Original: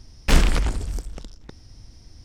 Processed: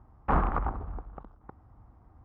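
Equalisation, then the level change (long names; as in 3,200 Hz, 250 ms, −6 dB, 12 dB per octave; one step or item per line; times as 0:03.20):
high-pass filter 42 Hz
transistor ladder low-pass 1,300 Hz, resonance 65%
parametric band 790 Hz +9 dB 0.33 octaves
+3.5 dB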